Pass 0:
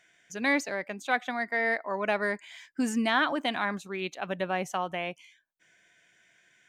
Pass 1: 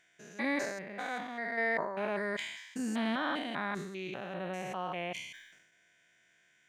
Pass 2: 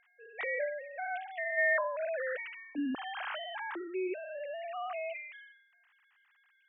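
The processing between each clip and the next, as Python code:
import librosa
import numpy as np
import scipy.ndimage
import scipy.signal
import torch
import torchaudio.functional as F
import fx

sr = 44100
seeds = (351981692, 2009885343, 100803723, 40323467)

y1 = fx.spec_steps(x, sr, hold_ms=200)
y1 = fx.sustainer(y1, sr, db_per_s=53.0)
y1 = y1 * librosa.db_to_amplitude(-3.0)
y2 = fx.sine_speech(y1, sr)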